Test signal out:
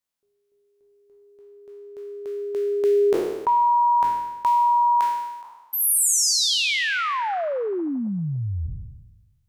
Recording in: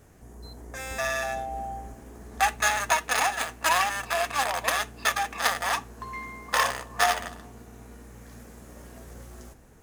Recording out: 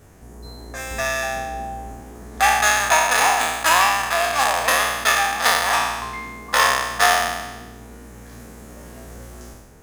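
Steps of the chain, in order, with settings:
peak hold with a decay on every bin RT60 1.19 s
level +4 dB

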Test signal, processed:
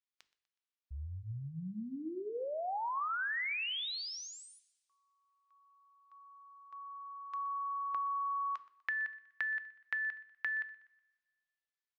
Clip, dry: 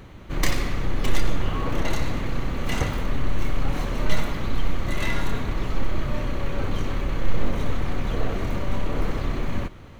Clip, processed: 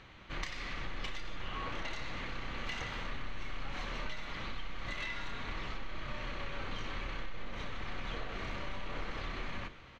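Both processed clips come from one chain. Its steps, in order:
tilt shelving filter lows −9 dB, about 1,100 Hz
mains-hum notches 50/100/150/200/250/300/350/400/450 Hz
downward compressor 12 to 1, threshold −28 dBFS
high-frequency loss of the air 180 metres
repeating echo 123 ms, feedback 44%, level −21 dB
coupled-rooms reverb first 0.5 s, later 1.7 s, from −18 dB, DRR 13.5 dB
level −5 dB

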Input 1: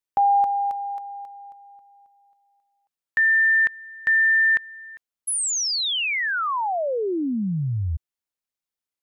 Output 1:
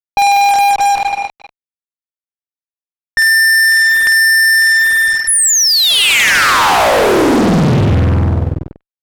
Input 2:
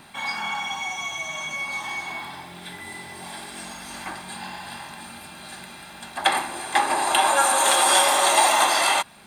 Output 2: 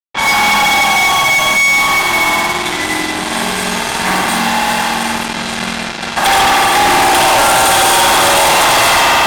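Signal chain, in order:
spring reverb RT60 2.1 s, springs 48 ms, chirp 55 ms, DRR −5 dB
fuzz pedal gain 33 dB, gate −34 dBFS
low-pass that shuts in the quiet parts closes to 2,300 Hz, open at −15 dBFS
level +4.5 dB

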